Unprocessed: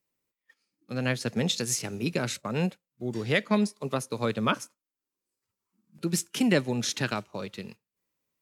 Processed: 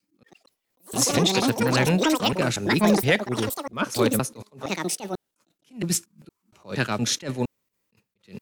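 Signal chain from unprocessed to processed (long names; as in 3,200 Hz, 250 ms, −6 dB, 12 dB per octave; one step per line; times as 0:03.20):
slices reordered back to front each 233 ms, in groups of 4
delay with pitch and tempo change per echo 178 ms, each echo +7 semitones, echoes 2
in parallel at −5.5 dB: soft clipping −22.5 dBFS, distortion −11 dB
on the sum: level that may rise only so fast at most 230 dB per second
level +2.5 dB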